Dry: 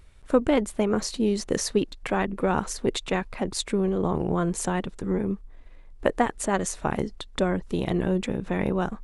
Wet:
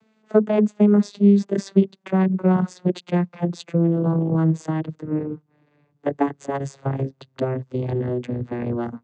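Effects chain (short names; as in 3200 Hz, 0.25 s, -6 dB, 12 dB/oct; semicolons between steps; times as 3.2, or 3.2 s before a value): vocoder on a gliding note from A3, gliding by -11 st; gain +6 dB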